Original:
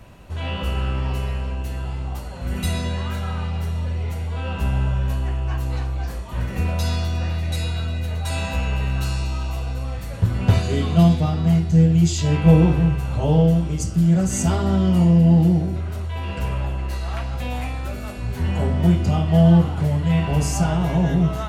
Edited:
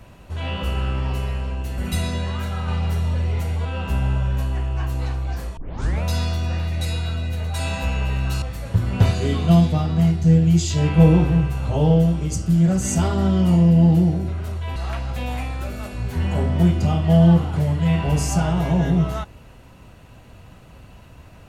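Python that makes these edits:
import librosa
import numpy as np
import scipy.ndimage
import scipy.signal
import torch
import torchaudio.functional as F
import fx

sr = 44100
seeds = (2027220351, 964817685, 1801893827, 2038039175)

y = fx.edit(x, sr, fx.cut(start_s=1.78, length_s=0.71),
    fx.clip_gain(start_s=3.39, length_s=0.97, db=3.0),
    fx.tape_start(start_s=6.28, length_s=0.46),
    fx.cut(start_s=9.13, length_s=0.77),
    fx.cut(start_s=16.24, length_s=0.76), tone=tone)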